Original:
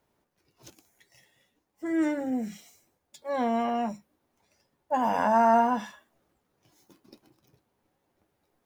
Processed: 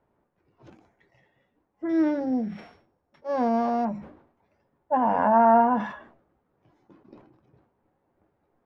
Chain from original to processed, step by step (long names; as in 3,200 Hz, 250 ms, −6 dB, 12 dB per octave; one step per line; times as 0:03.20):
0:01.89–0:03.85: samples sorted by size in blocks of 8 samples
low-pass filter 1,500 Hz 12 dB per octave
level that may fall only so fast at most 93 dB per second
level +3.5 dB